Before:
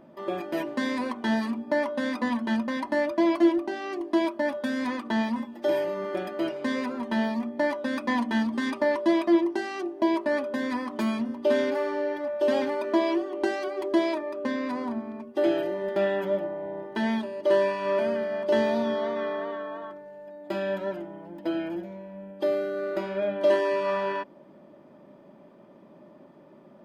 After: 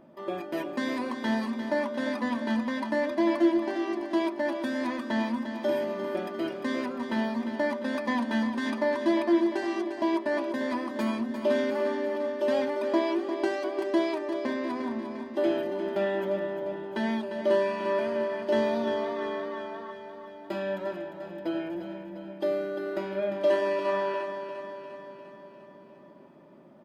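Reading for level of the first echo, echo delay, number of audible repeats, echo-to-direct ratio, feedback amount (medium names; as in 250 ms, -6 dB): -9.0 dB, 350 ms, 6, -7.0 dB, 59%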